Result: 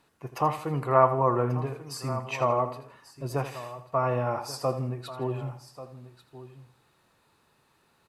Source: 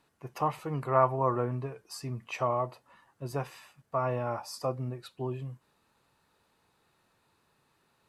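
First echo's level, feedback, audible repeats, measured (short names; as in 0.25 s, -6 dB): -12.0 dB, no steady repeat, 5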